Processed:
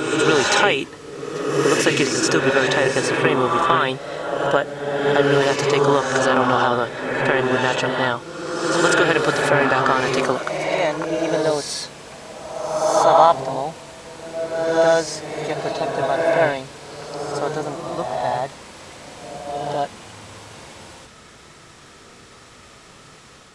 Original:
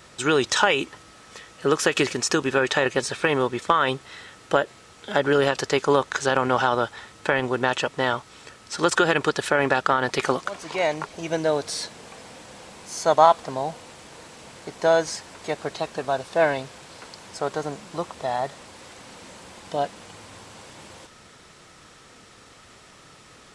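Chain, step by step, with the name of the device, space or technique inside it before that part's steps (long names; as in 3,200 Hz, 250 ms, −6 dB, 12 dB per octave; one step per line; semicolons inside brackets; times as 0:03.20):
reverse reverb (reversed playback; convolution reverb RT60 1.6 s, pre-delay 49 ms, DRR 0 dB; reversed playback)
level +1.5 dB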